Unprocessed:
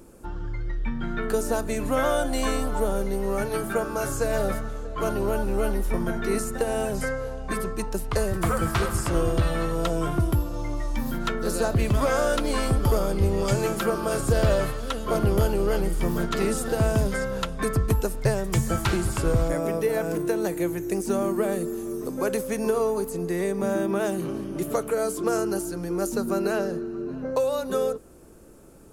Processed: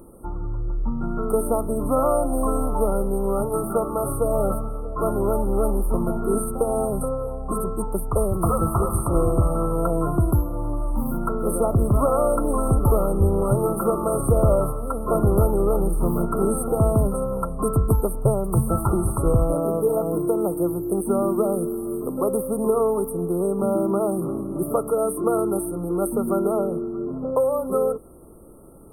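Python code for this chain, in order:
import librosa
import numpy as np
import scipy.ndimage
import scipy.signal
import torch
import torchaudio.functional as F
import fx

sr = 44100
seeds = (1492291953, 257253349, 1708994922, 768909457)

y = fx.brickwall_bandstop(x, sr, low_hz=1400.0, high_hz=8300.0)
y = y * librosa.db_to_amplitude(3.5)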